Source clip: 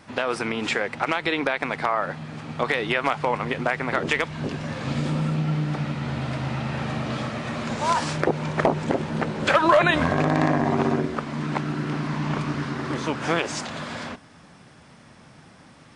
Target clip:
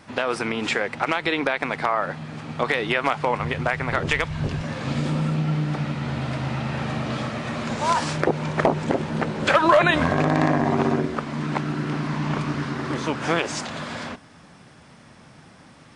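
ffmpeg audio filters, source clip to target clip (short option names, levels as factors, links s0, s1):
-filter_complex "[0:a]asplit=3[s0][s1][s2];[s0]afade=t=out:st=3.38:d=0.02[s3];[s1]asubboost=boost=7:cutoff=100,afade=t=in:st=3.38:d=0.02,afade=t=out:st=4.61:d=0.02[s4];[s2]afade=t=in:st=4.61:d=0.02[s5];[s3][s4][s5]amix=inputs=3:normalize=0,volume=1.12"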